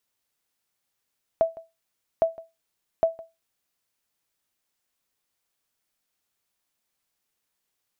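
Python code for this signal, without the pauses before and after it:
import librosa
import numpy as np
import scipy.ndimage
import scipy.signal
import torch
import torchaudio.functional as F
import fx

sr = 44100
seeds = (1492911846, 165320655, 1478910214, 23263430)

y = fx.sonar_ping(sr, hz=657.0, decay_s=0.22, every_s=0.81, pings=3, echo_s=0.16, echo_db=-21.0, level_db=-12.0)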